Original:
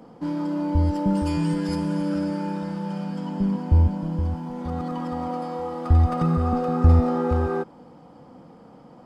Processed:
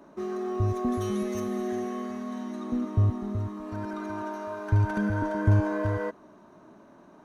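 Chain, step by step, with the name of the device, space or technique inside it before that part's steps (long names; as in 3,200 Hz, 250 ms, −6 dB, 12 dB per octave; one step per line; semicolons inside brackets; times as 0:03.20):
nightcore (speed change +25%)
level −5.5 dB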